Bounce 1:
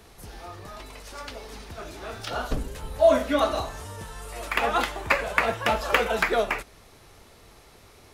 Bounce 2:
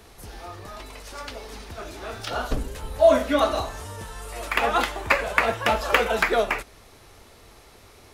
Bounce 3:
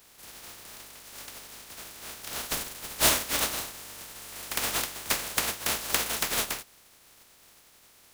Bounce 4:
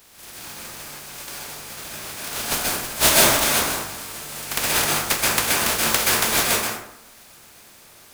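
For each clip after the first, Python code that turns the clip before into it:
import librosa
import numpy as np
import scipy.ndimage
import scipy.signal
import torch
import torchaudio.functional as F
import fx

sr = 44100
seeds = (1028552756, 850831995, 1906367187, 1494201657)

y1 = fx.peak_eq(x, sr, hz=160.0, db=-4.5, octaves=0.4)
y1 = y1 * librosa.db_to_amplitude(2.0)
y2 = fx.spec_flatten(y1, sr, power=0.16)
y2 = y2 * librosa.db_to_amplitude(-7.0)
y3 = fx.rev_plate(y2, sr, seeds[0], rt60_s=0.75, hf_ratio=0.5, predelay_ms=115, drr_db=-4.0)
y3 = y3 * librosa.db_to_amplitude(5.0)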